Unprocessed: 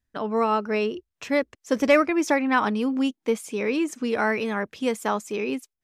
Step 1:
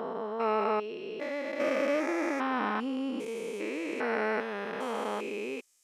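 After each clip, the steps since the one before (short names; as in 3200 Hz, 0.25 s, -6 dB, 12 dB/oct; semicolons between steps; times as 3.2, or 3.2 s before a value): stepped spectrum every 0.4 s; tone controls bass -14 dB, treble -6 dB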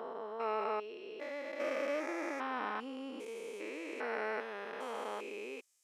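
HPF 330 Hz 12 dB/oct; gain -6.5 dB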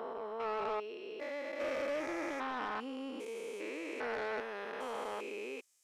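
soft clip -32.5 dBFS, distortion -14 dB; gain +2 dB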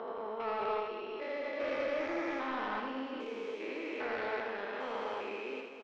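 LPF 4900 Hz 24 dB/oct; on a send: reverse bouncing-ball echo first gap 80 ms, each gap 1.6×, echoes 5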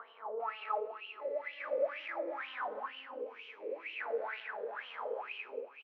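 wah 2.1 Hz 470–3000 Hz, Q 9.6; gain +9.5 dB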